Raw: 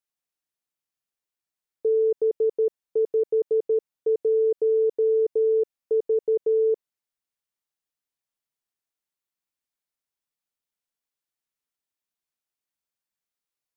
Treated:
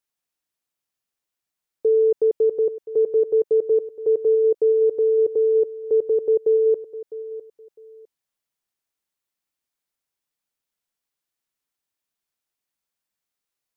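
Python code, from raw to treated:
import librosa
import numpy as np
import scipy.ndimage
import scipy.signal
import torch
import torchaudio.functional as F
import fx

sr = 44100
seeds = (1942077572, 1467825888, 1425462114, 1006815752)

y = fx.echo_feedback(x, sr, ms=655, feedback_pct=22, wet_db=-15.0)
y = F.gain(torch.from_numpy(y), 4.0).numpy()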